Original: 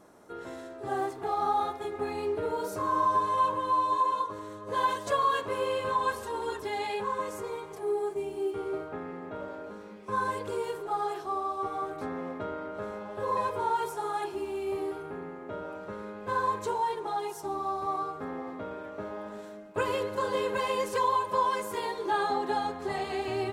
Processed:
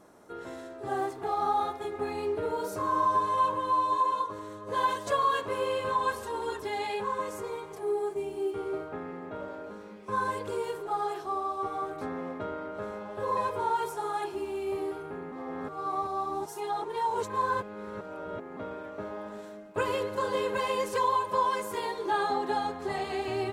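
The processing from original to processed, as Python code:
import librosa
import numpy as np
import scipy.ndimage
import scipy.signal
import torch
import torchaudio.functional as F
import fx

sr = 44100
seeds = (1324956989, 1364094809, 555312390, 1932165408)

y = fx.edit(x, sr, fx.reverse_span(start_s=15.32, length_s=3.25), tone=tone)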